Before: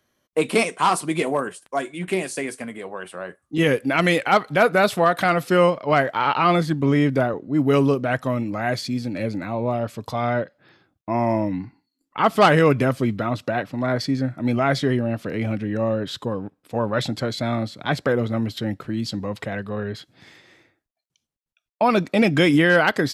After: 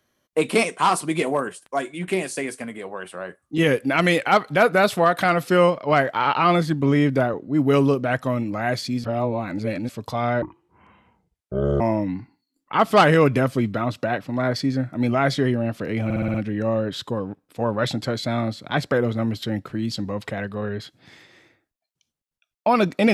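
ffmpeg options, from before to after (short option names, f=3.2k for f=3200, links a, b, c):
-filter_complex "[0:a]asplit=10[a][b][c][d][e][f][g][h][i][j];[a]atrim=end=9.042[k];[b]atrim=start=9.038:end=9.892,asetpts=PTS-STARTPTS,areverse[l];[c]atrim=start=9.888:end=10.424[m];[d]atrim=start=10.42:end=11.25,asetpts=PTS-STARTPTS,asetrate=26460,aresample=44100[n];[e]atrim=start=11.246:end=15.552[o];[f]atrim=start=15.488:end=15.552[p];[g]atrim=start=15.488:end=15.552[q];[h]atrim=start=15.488:end=15.552[r];[i]atrim=start=15.488:end=15.552[s];[j]atrim=start=15.488[t];[k][l]acrossfade=d=0.004:c1=hsin:c2=hsin[u];[u][m]acrossfade=d=0.004:c1=hsin:c2=hsin[v];[v][n]acrossfade=d=0.004:c1=hsin:c2=hsin[w];[w][o]acrossfade=d=0.004:c1=hsin:c2=hsin[x];[x][p]acrossfade=d=0.004:c1=hsin:c2=hsin[y];[y][q]acrossfade=d=0.004:c1=hsin:c2=hsin[z];[z][r]acrossfade=d=0.004:c1=hsin:c2=hsin[aa];[aa][s]acrossfade=d=0.004:c1=hsin:c2=hsin[ab];[ab][t]acrossfade=d=0.004:c1=hsin:c2=hsin"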